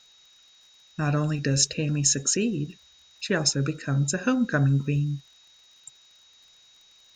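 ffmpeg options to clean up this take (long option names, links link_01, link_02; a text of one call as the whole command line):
ffmpeg -i in.wav -af "adeclick=threshold=4,bandreject=frequency=3800:width=30,afftdn=noise_reduction=14:noise_floor=-57" out.wav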